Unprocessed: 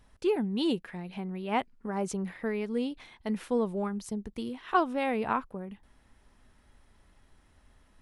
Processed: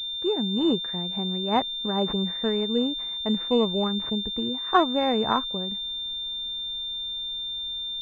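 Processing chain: level rider gain up to 6 dB; class-D stage that switches slowly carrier 3.6 kHz

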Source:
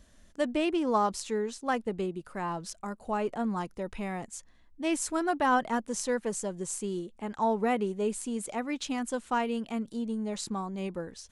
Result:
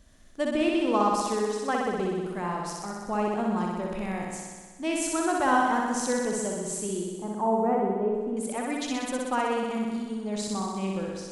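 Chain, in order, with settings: 7.08–8.37 s: Chebyshev low-pass 940 Hz, order 2; flutter echo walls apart 10.7 m, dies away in 1.5 s

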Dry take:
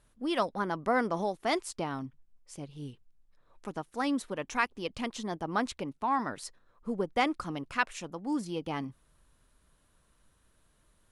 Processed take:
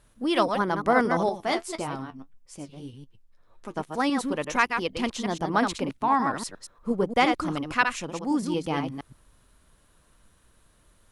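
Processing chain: chunks repeated in reverse 117 ms, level -6 dB; 1.29–3.77 s: flange 1.7 Hz, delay 7.4 ms, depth 4.8 ms, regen +46%; trim +6 dB

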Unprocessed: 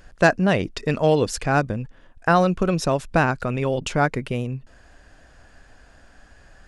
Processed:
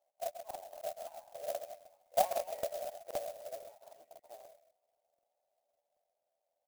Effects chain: split-band scrambler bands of 2 kHz; Doppler pass-by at 2.24 s, 17 m/s, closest 3.3 m; spectral gate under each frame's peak -10 dB weak; Butterworth band-pass 650 Hz, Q 4; doubling 12 ms -3.5 dB; delay 132 ms -9 dB; crackling interface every 0.26 s, samples 2048, repeat, from 0.46 s; sampling jitter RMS 0.064 ms; trim +15.5 dB

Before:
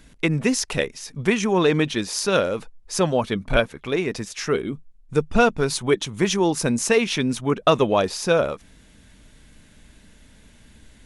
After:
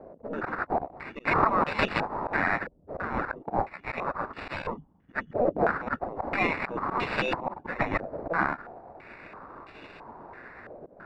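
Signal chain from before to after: spectral gate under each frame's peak -20 dB weak; peaking EQ 230 Hz +11.5 dB 1.7 oct; slow attack 203 ms; sample-and-hold 14×; step-sequenced low-pass 3 Hz 590–2900 Hz; trim +8 dB

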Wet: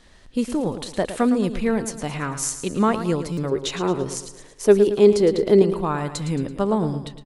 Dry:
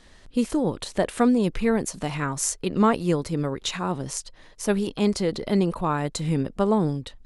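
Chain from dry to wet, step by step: 3.51–5.62 s: peaking EQ 400 Hz +13 dB 0.64 oct; feedback delay 111 ms, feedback 46%, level -11 dB; buffer glitch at 3.32 s, samples 256, times 8

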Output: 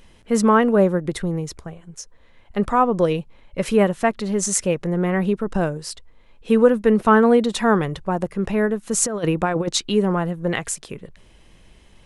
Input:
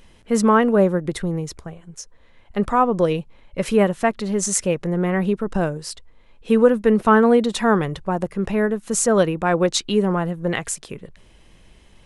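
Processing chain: 9.02–9.69 s: compressor with a negative ratio -20 dBFS, ratio -0.5

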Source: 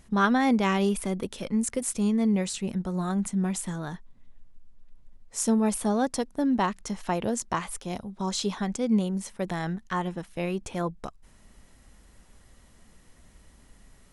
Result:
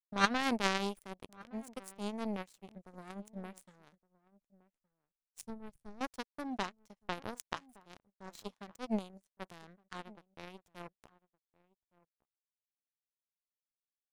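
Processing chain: power-law waveshaper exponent 3; 5.41–6.01 s: FFT filter 140 Hz 0 dB, 210 Hz -12 dB, 1.1 kHz -19 dB; echo from a far wall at 200 m, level -22 dB; trim +1.5 dB

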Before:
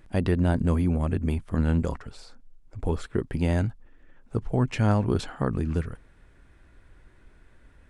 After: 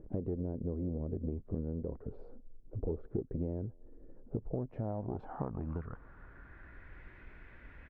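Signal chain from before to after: single-diode clipper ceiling -23.5 dBFS; compression 12:1, threshold -36 dBFS, peak gain reduction 19 dB; low-pass sweep 450 Hz -> 2.2 kHz, 4.21–7.06 s; speakerphone echo 240 ms, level -28 dB; trim +1.5 dB

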